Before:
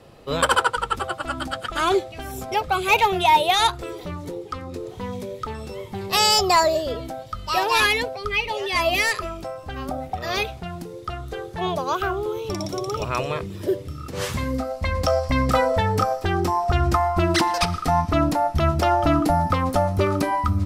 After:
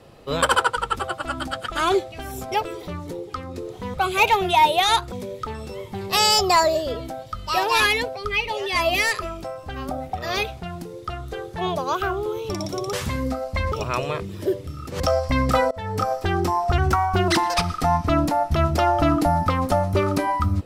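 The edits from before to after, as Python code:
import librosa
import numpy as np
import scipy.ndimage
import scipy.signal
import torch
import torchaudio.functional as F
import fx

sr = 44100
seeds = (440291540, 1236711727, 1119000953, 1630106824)

y = fx.edit(x, sr, fx.move(start_s=2.65, length_s=1.18, to_s=5.12),
    fx.move(start_s=14.21, length_s=0.79, to_s=12.93),
    fx.fade_in_from(start_s=15.71, length_s=0.42, floor_db=-24.0),
    fx.speed_span(start_s=16.78, length_s=0.54, speed=1.08), tone=tone)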